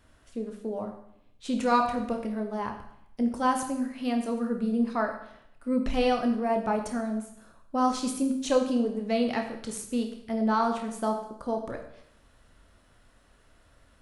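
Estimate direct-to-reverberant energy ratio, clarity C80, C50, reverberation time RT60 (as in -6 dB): 3.5 dB, 10.0 dB, 7.5 dB, 0.70 s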